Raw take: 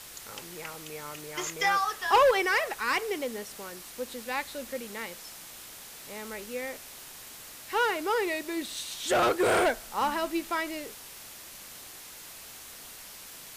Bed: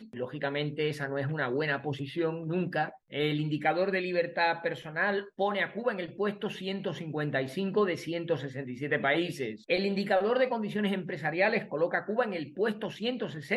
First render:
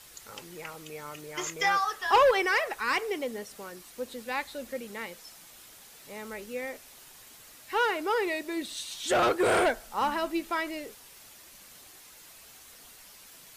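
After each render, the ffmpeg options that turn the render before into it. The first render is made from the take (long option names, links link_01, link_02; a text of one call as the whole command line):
ffmpeg -i in.wav -af "afftdn=noise_reduction=7:noise_floor=-46" out.wav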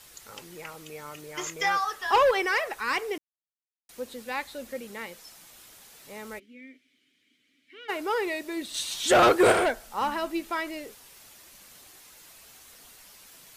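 ffmpeg -i in.wav -filter_complex "[0:a]asplit=3[link_01][link_02][link_03];[link_01]afade=type=out:start_time=6.38:duration=0.02[link_04];[link_02]asplit=3[link_05][link_06][link_07];[link_05]bandpass=frequency=270:width_type=q:width=8,volume=0dB[link_08];[link_06]bandpass=frequency=2290:width_type=q:width=8,volume=-6dB[link_09];[link_07]bandpass=frequency=3010:width_type=q:width=8,volume=-9dB[link_10];[link_08][link_09][link_10]amix=inputs=3:normalize=0,afade=type=in:start_time=6.38:duration=0.02,afade=type=out:start_time=7.88:duration=0.02[link_11];[link_03]afade=type=in:start_time=7.88:duration=0.02[link_12];[link_04][link_11][link_12]amix=inputs=3:normalize=0,asplit=5[link_13][link_14][link_15][link_16][link_17];[link_13]atrim=end=3.18,asetpts=PTS-STARTPTS,afade=type=out:start_time=3.176:duration=0.004:curve=hsin[link_18];[link_14]atrim=start=3.18:end=3.89,asetpts=PTS-STARTPTS,volume=0[link_19];[link_15]atrim=start=3.89:end=8.742,asetpts=PTS-STARTPTS,afade=type=in:duration=0.004:curve=hsin[link_20];[link_16]atrim=start=8.738:end=9.522,asetpts=PTS-STARTPTS,volume=6dB[link_21];[link_17]atrim=start=9.518[link_22];[link_18][link_19][link_20]concat=n=3:v=0:a=1[link_23];[link_23][link_21]acrossfade=duration=0.004:curve1=hsin:curve2=hsin[link_24];[link_24][link_22]acrossfade=duration=0.004:curve1=hsin:curve2=hsin" out.wav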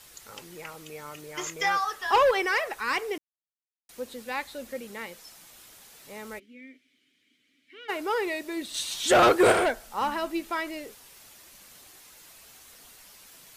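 ffmpeg -i in.wav -af anull out.wav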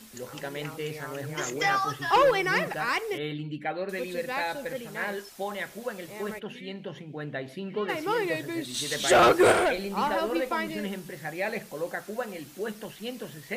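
ffmpeg -i in.wav -i bed.wav -filter_complex "[1:a]volume=-4.5dB[link_01];[0:a][link_01]amix=inputs=2:normalize=0" out.wav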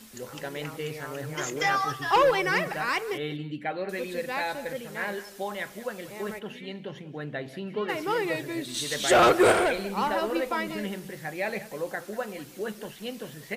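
ffmpeg -i in.wav -af "aecho=1:1:189:0.141" out.wav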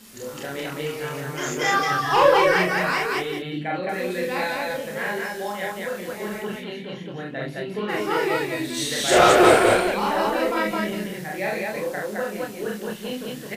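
ffmpeg -i in.wav -filter_complex "[0:a]asplit=2[link_01][link_02];[link_02]adelay=28,volume=-4dB[link_03];[link_01][link_03]amix=inputs=2:normalize=0,aecho=1:1:43.73|215.7:0.891|0.891" out.wav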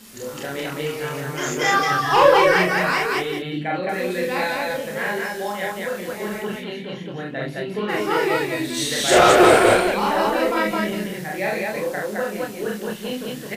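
ffmpeg -i in.wav -af "volume=2.5dB,alimiter=limit=-3dB:level=0:latency=1" out.wav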